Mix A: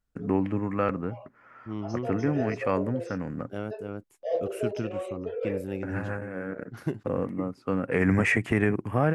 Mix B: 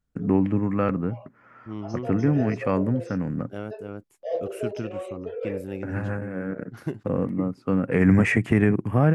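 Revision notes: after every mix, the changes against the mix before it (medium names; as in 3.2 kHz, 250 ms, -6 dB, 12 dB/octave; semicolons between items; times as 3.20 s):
first voice: add peaking EQ 160 Hz +7.5 dB 2.1 oct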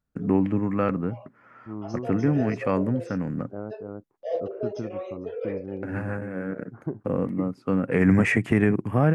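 second voice: add low-pass 1.2 kHz 24 dB/octave; master: add bass shelf 88 Hz -6.5 dB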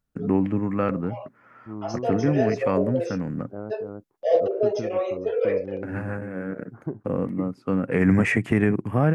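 background +9.0 dB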